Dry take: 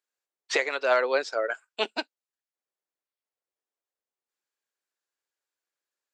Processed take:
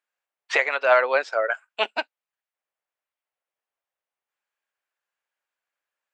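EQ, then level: band shelf 1300 Hz +10.5 dB 2.8 oct; -4.5 dB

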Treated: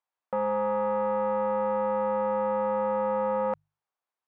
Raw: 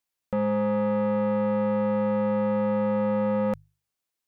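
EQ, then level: band-pass 910 Hz, Q 1.5; +5.0 dB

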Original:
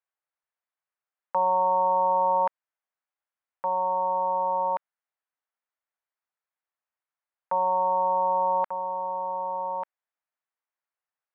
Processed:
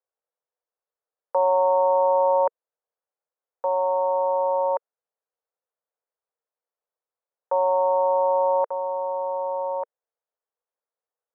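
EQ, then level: resonant high-pass 470 Hz, resonance Q 5; LPF 1600 Hz; air absorption 450 m; 0.0 dB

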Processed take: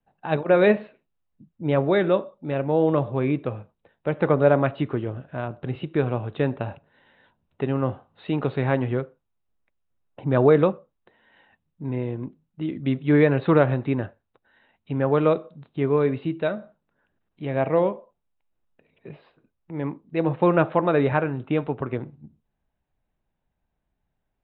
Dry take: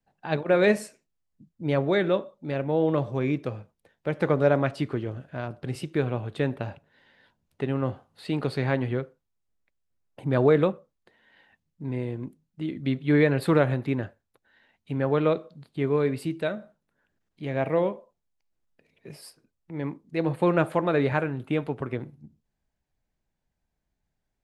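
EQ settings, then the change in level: rippled Chebyshev low-pass 3900 Hz, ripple 3 dB; high shelf 2900 Hz -8 dB; +5.5 dB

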